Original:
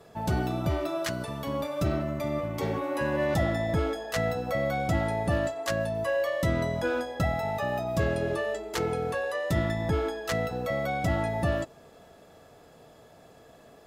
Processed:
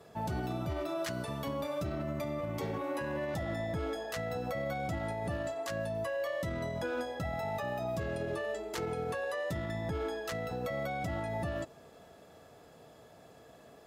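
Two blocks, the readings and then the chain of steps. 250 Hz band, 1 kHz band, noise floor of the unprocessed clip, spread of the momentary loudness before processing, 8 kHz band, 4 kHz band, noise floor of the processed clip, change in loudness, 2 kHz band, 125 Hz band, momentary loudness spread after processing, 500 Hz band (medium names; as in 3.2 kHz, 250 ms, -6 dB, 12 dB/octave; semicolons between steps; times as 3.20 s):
-7.5 dB, -6.5 dB, -54 dBFS, 4 LU, -7.0 dB, -6.5 dB, -57 dBFS, -7.0 dB, -7.0 dB, -8.5 dB, 2 LU, -6.5 dB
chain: high-pass 48 Hz; peak limiter -25 dBFS, peak gain reduction 11 dB; trim -2.5 dB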